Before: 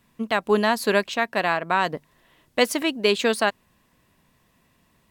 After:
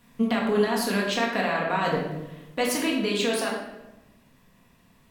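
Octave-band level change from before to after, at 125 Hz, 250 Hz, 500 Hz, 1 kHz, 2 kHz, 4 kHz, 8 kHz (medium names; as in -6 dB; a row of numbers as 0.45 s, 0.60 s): +3.0 dB, +1.5 dB, -3.0 dB, -4.0 dB, -4.0 dB, -3.0 dB, +1.0 dB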